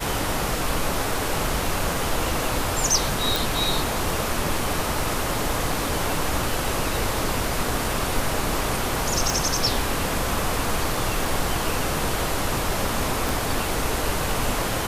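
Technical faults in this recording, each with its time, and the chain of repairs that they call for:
3.36 pop
9.3 pop
13.29 pop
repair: de-click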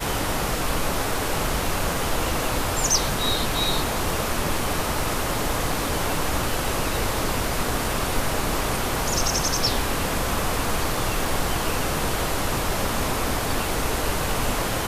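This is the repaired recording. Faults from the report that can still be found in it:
9.3 pop
13.29 pop

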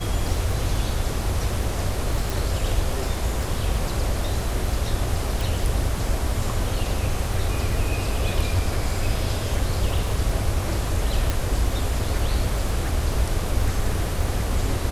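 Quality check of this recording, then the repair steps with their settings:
crackle 38/s -30 dBFS
2.3 pop
5.41 pop
11.3 pop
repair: de-click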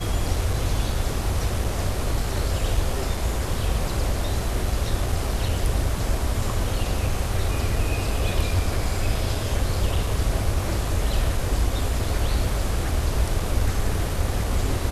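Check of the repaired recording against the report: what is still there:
11.3 pop

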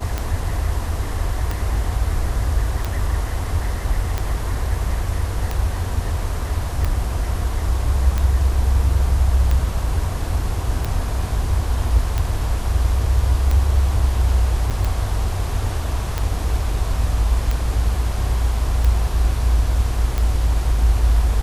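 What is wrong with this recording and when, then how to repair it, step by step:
tick 45 rpm -9 dBFS
14.7–14.71 gap 7.4 ms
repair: de-click; interpolate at 14.7, 7.4 ms

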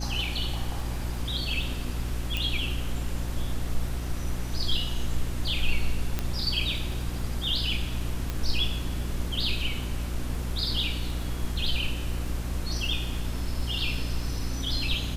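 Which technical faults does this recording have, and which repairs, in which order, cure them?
crackle 22/s -36 dBFS
hum 60 Hz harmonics 6 -32 dBFS
2.37 pop
6.19 pop -13 dBFS
8.3 pop -16 dBFS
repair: de-click; de-hum 60 Hz, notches 6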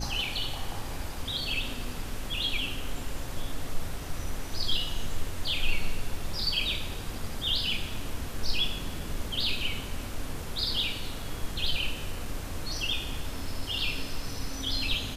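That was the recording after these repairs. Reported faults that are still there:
8.3 pop

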